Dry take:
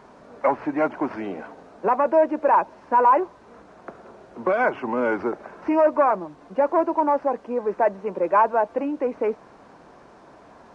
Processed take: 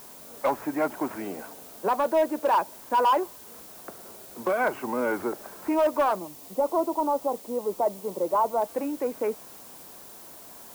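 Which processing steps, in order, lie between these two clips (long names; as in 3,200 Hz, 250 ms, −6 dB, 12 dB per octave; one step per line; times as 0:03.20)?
hard clipping −13 dBFS, distortion −20 dB
0:06.19–0:08.62: Savitzky-Golay smoothing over 65 samples
background noise blue −43 dBFS
level −4 dB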